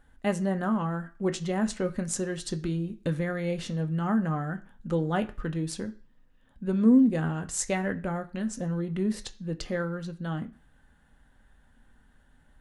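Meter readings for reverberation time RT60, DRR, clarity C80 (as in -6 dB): not exponential, 6.5 dB, 22.0 dB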